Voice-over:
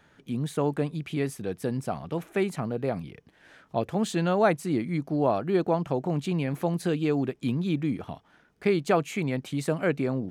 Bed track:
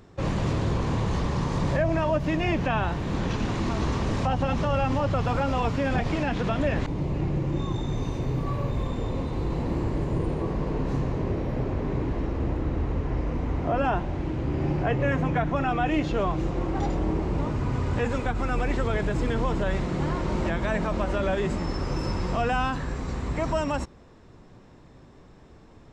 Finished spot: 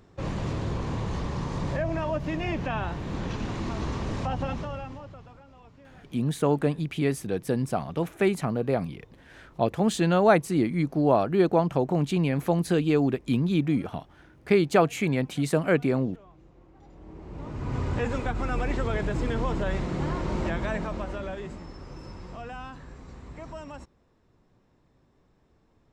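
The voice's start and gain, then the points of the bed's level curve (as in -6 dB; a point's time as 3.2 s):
5.85 s, +3.0 dB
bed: 4.47 s -4.5 dB
5.44 s -27.5 dB
16.8 s -27.5 dB
17.77 s -2 dB
20.59 s -2 dB
21.73 s -14 dB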